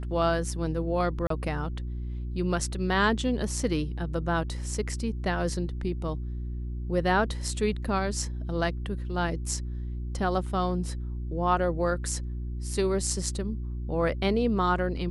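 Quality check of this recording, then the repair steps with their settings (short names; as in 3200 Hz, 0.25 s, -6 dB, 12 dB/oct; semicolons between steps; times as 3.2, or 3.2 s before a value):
hum 60 Hz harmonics 6 -33 dBFS
1.27–1.3 gap 33 ms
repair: de-hum 60 Hz, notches 6; interpolate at 1.27, 33 ms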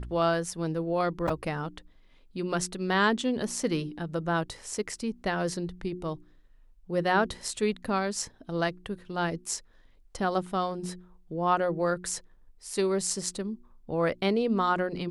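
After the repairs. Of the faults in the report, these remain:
none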